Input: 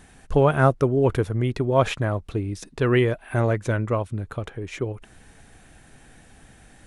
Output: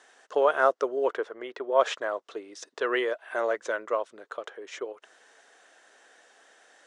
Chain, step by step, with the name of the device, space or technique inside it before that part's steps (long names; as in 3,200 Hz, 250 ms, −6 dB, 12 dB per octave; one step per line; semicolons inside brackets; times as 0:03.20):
0:01.12–0:01.80: bass and treble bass −4 dB, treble −12 dB
phone speaker on a table (loudspeaker in its box 470–7,100 Hz, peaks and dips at 810 Hz −5 dB, 2,400 Hz −8 dB, 4,200 Hz −3 dB)